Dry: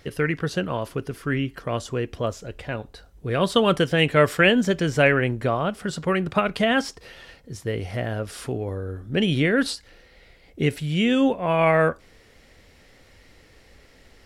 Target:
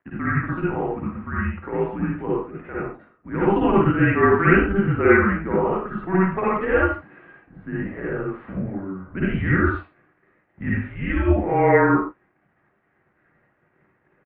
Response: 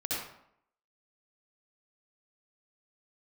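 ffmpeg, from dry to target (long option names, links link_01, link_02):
-filter_complex "[0:a]aresample=11025,aeval=exprs='sgn(val(0))*max(abs(val(0))-0.00335,0)':channel_layout=same,aresample=44100[link_01];[1:a]atrim=start_sample=2205,afade=type=out:start_time=0.3:duration=0.01,atrim=end_sample=13671,asetrate=52920,aresample=44100[link_02];[link_01][link_02]afir=irnorm=-1:irlink=0,highpass=frequency=290:width_type=q:width=0.5412,highpass=frequency=290:width_type=q:width=1.307,lowpass=frequency=2200:width_type=q:width=0.5176,lowpass=frequency=2200:width_type=q:width=0.7071,lowpass=frequency=2200:width_type=q:width=1.932,afreqshift=-190"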